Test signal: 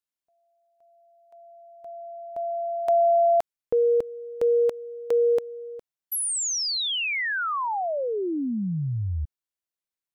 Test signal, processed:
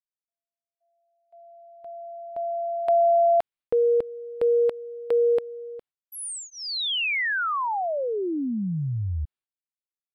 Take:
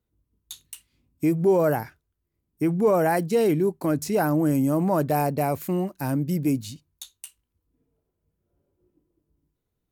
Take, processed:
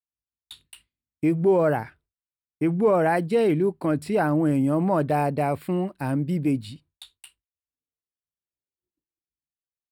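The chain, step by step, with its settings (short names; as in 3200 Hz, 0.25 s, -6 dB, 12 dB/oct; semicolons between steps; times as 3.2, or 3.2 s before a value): running mean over 7 samples; high shelf 2200 Hz +7 dB; expander -50 dBFS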